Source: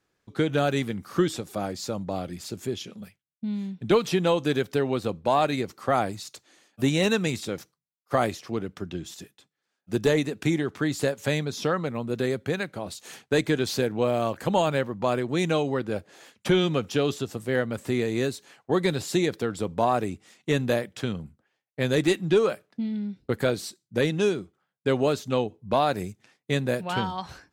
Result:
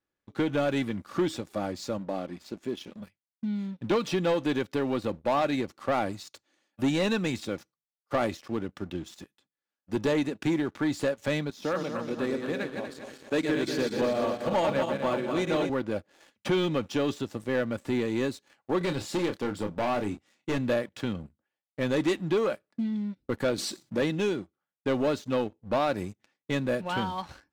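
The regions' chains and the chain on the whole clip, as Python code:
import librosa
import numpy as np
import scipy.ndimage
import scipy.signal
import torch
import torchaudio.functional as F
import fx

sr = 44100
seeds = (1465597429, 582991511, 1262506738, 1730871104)

y = fx.chain(x, sr, fx.lowpass(hz=3700.0, slope=6),
    fx.peak_eq(hz=98.0, db=-14.0, octaves=0.68), at=(1.98, 2.87))
y = fx.chain(y, sr, fx.reverse_delay_fb(ms=120, feedback_pct=74, wet_db=-5.0),
    fx.highpass(hz=140.0, slope=12),
    fx.upward_expand(threshold_db=-33.0, expansion=1.5), at=(11.5, 15.7))
y = fx.chain(y, sr, fx.overload_stage(gain_db=23.0),
    fx.doubler(ms=29.0, db=-8), at=(18.78, 20.58))
y = fx.chain(y, sr, fx.highpass(hz=130.0, slope=12),
    fx.env_flatten(amount_pct=50), at=(23.58, 24.02))
y = fx.high_shelf(y, sr, hz=7700.0, db=-12.0)
y = y + 0.31 * np.pad(y, (int(3.5 * sr / 1000.0), 0))[:len(y)]
y = fx.leveller(y, sr, passes=2)
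y = F.gain(torch.from_numpy(y), -8.5).numpy()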